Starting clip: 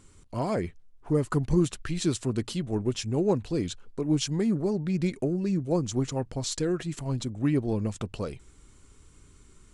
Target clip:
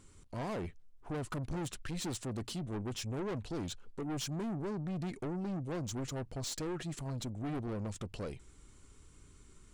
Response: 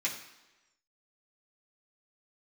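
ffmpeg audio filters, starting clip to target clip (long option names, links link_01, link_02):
-af "aeval=exprs='(tanh(39.8*val(0)+0.25)-tanh(0.25))/39.8':channel_layout=same,volume=-3dB"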